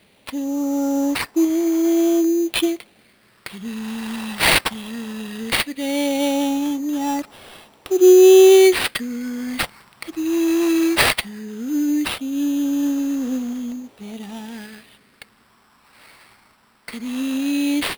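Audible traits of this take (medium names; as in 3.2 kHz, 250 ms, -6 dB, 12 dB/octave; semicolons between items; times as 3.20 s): phasing stages 4, 0.17 Hz, lowest notch 480–2400 Hz; aliases and images of a low sample rate 6.6 kHz, jitter 0%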